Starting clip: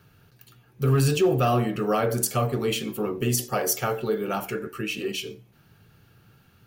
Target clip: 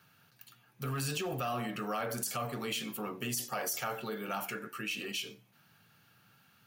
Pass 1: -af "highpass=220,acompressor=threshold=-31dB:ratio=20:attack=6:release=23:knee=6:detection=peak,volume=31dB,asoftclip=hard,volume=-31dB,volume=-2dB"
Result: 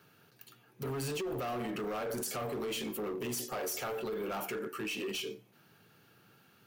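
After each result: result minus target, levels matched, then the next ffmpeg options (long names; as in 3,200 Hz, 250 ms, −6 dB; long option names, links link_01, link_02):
gain into a clipping stage and back: distortion +19 dB; 500 Hz band +4.0 dB
-af "highpass=220,acompressor=threshold=-31dB:ratio=20:attack=6:release=23:knee=6:detection=peak,volume=23dB,asoftclip=hard,volume=-23dB,volume=-2dB"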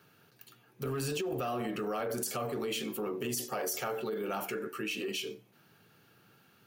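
500 Hz band +4.0 dB
-af "highpass=220,equalizer=frequency=390:width_type=o:width=1:gain=-12.5,acompressor=threshold=-31dB:ratio=20:attack=6:release=23:knee=6:detection=peak,volume=23dB,asoftclip=hard,volume=-23dB,volume=-2dB"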